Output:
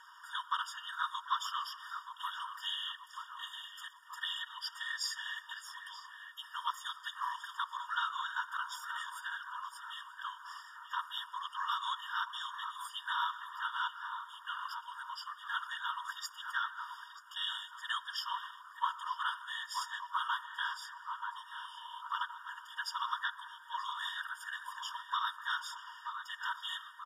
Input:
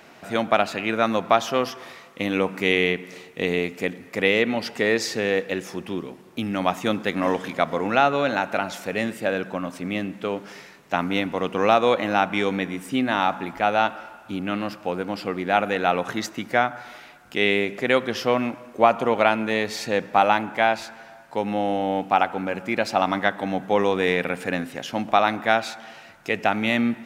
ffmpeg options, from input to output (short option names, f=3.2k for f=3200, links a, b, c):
-filter_complex "[0:a]asplit=2[a][b];[b]adelay=930,lowpass=f=1.8k:p=1,volume=-8.5dB,asplit=2[c][d];[d]adelay=930,lowpass=f=1.8k:p=1,volume=0.54,asplit=2[e][f];[f]adelay=930,lowpass=f=1.8k:p=1,volume=0.54,asplit=2[g][h];[h]adelay=930,lowpass=f=1.8k:p=1,volume=0.54,asplit=2[i][j];[j]adelay=930,lowpass=f=1.8k:p=1,volume=0.54,asplit=2[k][l];[l]adelay=930,lowpass=f=1.8k:p=1,volume=0.54[m];[a][c][e][g][i][k][m]amix=inputs=7:normalize=0,afftfilt=real='hypot(re,im)*cos(2*PI*random(0))':imag='hypot(re,im)*sin(2*PI*random(1))':win_size=512:overlap=0.75,acrossover=split=260|3000[n][o][p];[o]acompressor=threshold=-48dB:ratio=1.5[q];[n][q][p]amix=inputs=3:normalize=0,atempo=1,equalizer=f=640:w=1.4:g=14.5,bandreject=f=50:t=h:w=6,bandreject=f=100:t=h:w=6,bandreject=f=150:t=h:w=6,bandreject=f=200:t=h:w=6,bandreject=f=250:t=h:w=6,bandreject=f=300:t=h:w=6,bandreject=f=350:t=h:w=6,bandreject=f=400:t=h:w=6,bandreject=f=450:t=h:w=6,afftfilt=real='re*eq(mod(floor(b*sr/1024/940),2),1)':imag='im*eq(mod(floor(b*sr/1024/940),2),1)':win_size=1024:overlap=0.75,volume=1dB"